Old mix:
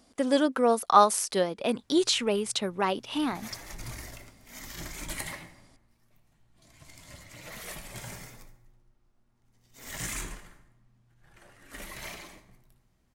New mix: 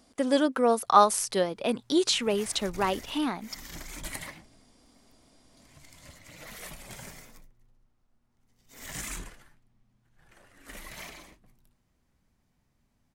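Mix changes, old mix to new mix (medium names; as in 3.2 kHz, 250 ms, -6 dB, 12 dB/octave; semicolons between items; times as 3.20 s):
background: entry -1.05 s; reverb: off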